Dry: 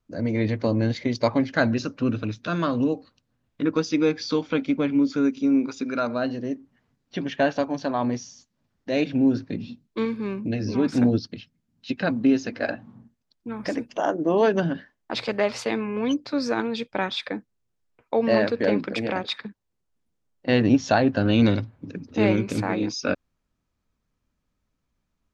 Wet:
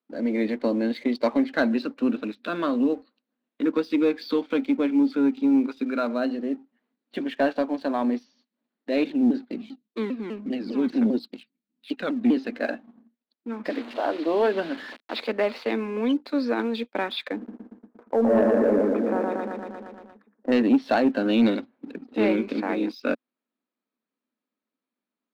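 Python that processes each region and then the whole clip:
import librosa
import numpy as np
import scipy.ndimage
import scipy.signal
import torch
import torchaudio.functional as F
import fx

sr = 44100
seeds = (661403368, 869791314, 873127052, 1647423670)

y = fx.chain(x, sr, fx.peak_eq(hz=780.0, db=-4.0, octaves=3.0),
    fx.vibrato_shape(shape='saw_down', rate_hz=5.0, depth_cents=250.0), at=(9.1, 12.37))
y = fx.chain(y, sr, fx.delta_mod(bps=64000, step_db=-30.0),
    fx.highpass(hz=310.0, slope=6), at=(13.7, 15.2))
y = fx.chain(y, sr, fx.lowpass(hz=1400.0, slope=24),
    fx.echo_feedback(ms=117, feedback_pct=56, wet_db=-3),
    fx.sustainer(db_per_s=22.0), at=(17.36, 20.52))
y = scipy.signal.sosfilt(scipy.signal.cheby1(4, 1.0, [230.0, 4300.0], 'bandpass', fs=sr, output='sos'), y)
y = fx.low_shelf(y, sr, hz=340.0, db=5.0)
y = fx.leveller(y, sr, passes=1)
y = y * 10.0 ** (-5.0 / 20.0)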